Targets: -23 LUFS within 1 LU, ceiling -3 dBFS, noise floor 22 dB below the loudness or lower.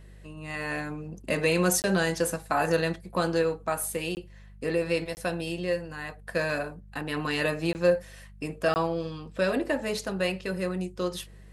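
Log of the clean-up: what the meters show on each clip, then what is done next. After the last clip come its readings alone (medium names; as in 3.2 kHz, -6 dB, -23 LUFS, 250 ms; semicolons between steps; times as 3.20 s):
dropouts 5; longest dropout 19 ms; hum 50 Hz; highest harmonic 200 Hz; hum level -47 dBFS; loudness -29.0 LUFS; peak level -11.5 dBFS; loudness target -23.0 LUFS
-> interpolate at 1.82/4.15/5.15/7.73/8.74 s, 19 ms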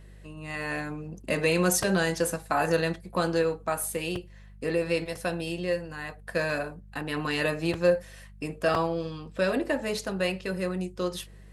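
dropouts 0; hum 50 Hz; highest harmonic 200 Hz; hum level -47 dBFS
-> de-hum 50 Hz, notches 4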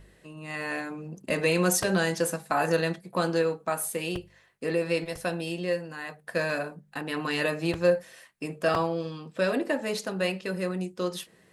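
hum not found; loudness -29.0 LUFS; peak level -11.5 dBFS; loudness target -23.0 LUFS
-> trim +6 dB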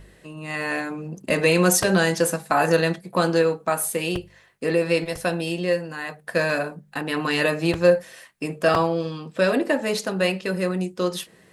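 loudness -23.0 LUFS; peak level -5.5 dBFS; noise floor -54 dBFS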